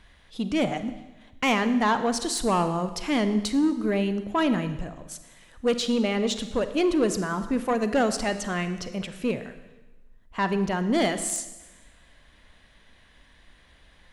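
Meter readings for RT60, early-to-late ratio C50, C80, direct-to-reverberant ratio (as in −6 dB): 1.1 s, 11.0 dB, 13.0 dB, 10.0 dB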